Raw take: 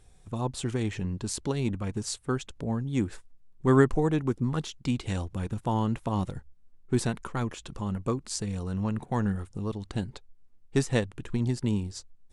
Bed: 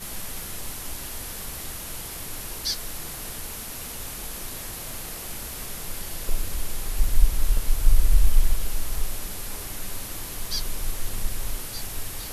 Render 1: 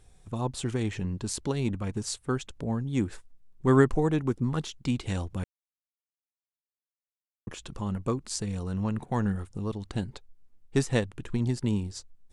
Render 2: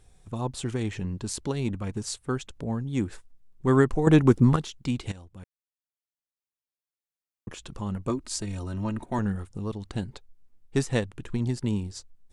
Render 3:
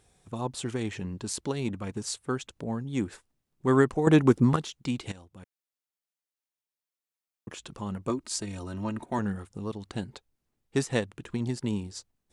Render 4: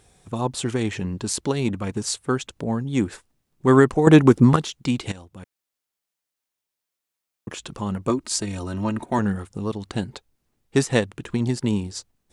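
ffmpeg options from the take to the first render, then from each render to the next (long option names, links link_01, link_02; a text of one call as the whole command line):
ffmpeg -i in.wav -filter_complex "[0:a]asplit=3[link_01][link_02][link_03];[link_01]atrim=end=5.44,asetpts=PTS-STARTPTS,afade=type=out:start_time=5.436:duration=0.004:curve=hsin[link_04];[link_02]atrim=start=5.44:end=7.47,asetpts=PTS-STARTPTS,volume=0[link_05];[link_03]atrim=start=7.47,asetpts=PTS-STARTPTS,afade=type=in:duration=0.004:curve=hsin[link_06];[link_04][link_05][link_06]concat=n=3:v=0:a=1" out.wav
ffmpeg -i in.wav -filter_complex "[0:a]asettb=1/sr,asplit=3[link_01][link_02][link_03];[link_01]atrim=end=8.094[link_04];[link_02]atrim=start=8.09:end=9.19,asetpts=PTS-STARTPTS,afade=type=in:duration=0.004:curve=qsin,afade=type=out:start_time=1.096:duration=0.004:curve=qsin,aecho=1:1:3.2:0.65,atrim=end_sample=48510[link_05];[link_03]atrim=start=9.186[link_06];[link_04][link_05]acrossfade=duration=0.004:curve1=hsin:curve2=qsin[link_07];[link_07][link_06]acrossfade=duration=0.004:curve1=qsin:curve2=hsin,asplit=4[link_08][link_09][link_10][link_11];[link_08]atrim=end=4.072[link_12];[link_09]atrim=start=4.068:end=4.562,asetpts=PTS-STARTPTS,volume=9.5dB[link_13];[link_10]atrim=start=4.558:end=5.12,asetpts=PTS-STARTPTS,afade=type=out:start_time=0.558:duration=0.004:curve=hsin:silence=0.158489[link_14];[link_11]atrim=start=5.12,asetpts=PTS-STARTPTS,afade=type=in:duration=2.39:silence=0.158489[link_15];[link_12][link_13]acrossfade=duration=0.004:curve1=hsin:curve2=hsin[link_16];[link_14][link_15]concat=n=2:v=0:a=1[link_17];[link_16][link_17]acrossfade=duration=0.004:curve1=hsin:curve2=hsin" out.wav
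ffmpeg -i in.wav -af "highpass=frequency=170:poles=1" out.wav
ffmpeg -i in.wav -af "volume=7.5dB,alimiter=limit=-2dB:level=0:latency=1" out.wav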